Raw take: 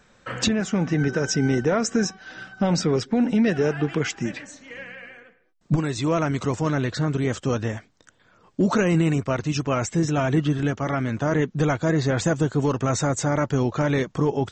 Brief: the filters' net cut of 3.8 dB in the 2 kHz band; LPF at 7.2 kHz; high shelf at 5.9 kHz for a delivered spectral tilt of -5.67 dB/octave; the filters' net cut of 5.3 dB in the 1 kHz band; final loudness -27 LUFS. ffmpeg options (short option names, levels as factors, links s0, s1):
-af "lowpass=7200,equalizer=f=1000:t=o:g=-7,equalizer=f=2000:t=o:g=-3,highshelf=f=5900:g=7,volume=0.708"